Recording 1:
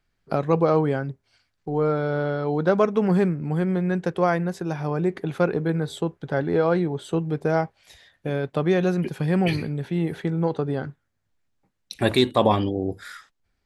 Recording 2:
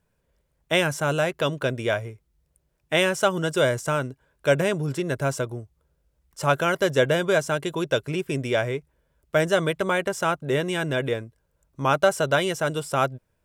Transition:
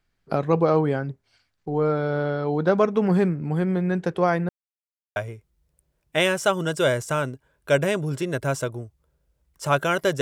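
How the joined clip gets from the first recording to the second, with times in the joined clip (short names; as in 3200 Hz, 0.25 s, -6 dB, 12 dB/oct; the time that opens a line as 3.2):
recording 1
4.49–5.16 mute
5.16 switch to recording 2 from 1.93 s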